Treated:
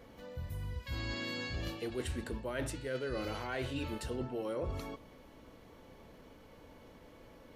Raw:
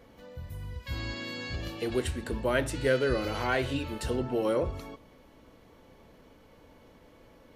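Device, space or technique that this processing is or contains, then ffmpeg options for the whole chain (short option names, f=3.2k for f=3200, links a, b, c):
compression on the reversed sound: -af "areverse,acompressor=threshold=-34dB:ratio=10,areverse"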